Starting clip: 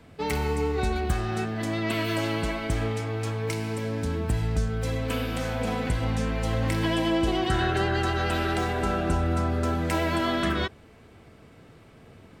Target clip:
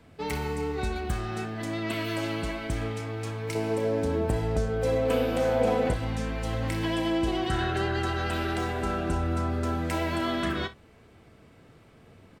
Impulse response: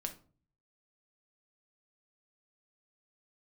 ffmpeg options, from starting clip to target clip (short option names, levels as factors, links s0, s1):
-filter_complex "[0:a]asettb=1/sr,asplit=3[s0][s1][s2];[s0]atrim=end=3.554[s3];[s1]atrim=start=3.55:end=5.94,asetpts=PTS-STARTPTS,afade=t=in:d=0.004:c=qsin,afade=t=out:st=2.386:d=0.004:c=qsin,equalizer=f=540:w=0.88:g=12.5[s4];[s2]atrim=start=5.936[s5];[s3][s4]acrossfade=d=0.004:c1=hsin:c2=qsin[s6];[s6][s5]acrossfade=d=0.004:c1=qsin:c2=hsin,aecho=1:1:33|61:0.211|0.133,volume=0.668"